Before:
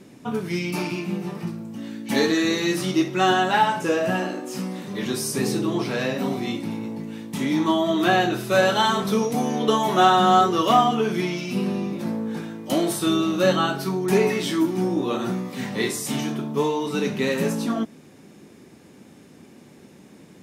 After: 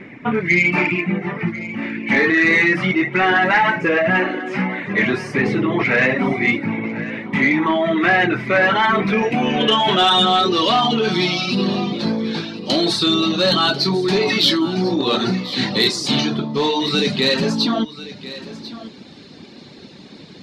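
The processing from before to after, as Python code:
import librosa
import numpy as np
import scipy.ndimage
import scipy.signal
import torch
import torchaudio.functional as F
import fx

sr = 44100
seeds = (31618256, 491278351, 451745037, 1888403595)

p1 = fx.dereverb_blind(x, sr, rt60_s=0.71)
p2 = fx.over_compress(p1, sr, threshold_db=-26.0, ratio=-1.0)
p3 = p1 + (p2 * 10.0 ** (1.5 / 20.0))
p4 = np.clip(p3, -10.0 ** (-11.0 / 20.0), 10.0 ** (-11.0 / 20.0))
p5 = fx.filter_sweep_lowpass(p4, sr, from_hz=2100.0, to_hz=4200.0, start_s=8.9, end_s=10.65, q=6.7)
p6 = 10.0 ** (-4.5 / 20.0) * np.tanh(p5 / 10.0 ** (-4.5 / 20.0))
y = p6 + fx.echo_single(p6, sr, ms=1044, db=-15.5, dry=0)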